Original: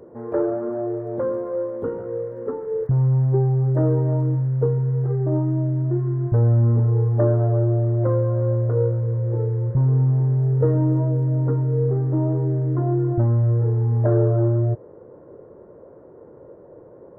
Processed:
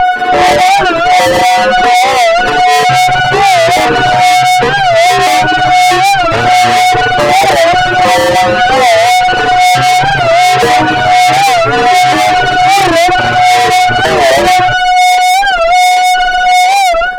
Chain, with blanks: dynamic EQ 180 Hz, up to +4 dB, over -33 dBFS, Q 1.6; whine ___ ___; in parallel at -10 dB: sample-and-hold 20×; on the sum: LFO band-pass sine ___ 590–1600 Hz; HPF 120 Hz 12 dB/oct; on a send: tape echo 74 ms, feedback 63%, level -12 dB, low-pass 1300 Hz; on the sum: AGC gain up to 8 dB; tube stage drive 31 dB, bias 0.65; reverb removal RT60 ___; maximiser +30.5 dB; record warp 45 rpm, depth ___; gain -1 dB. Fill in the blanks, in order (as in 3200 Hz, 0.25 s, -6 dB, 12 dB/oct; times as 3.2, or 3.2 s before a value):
730 Hz, -21 dBFS, 1.3 Hz, 1.3 s, 160 cents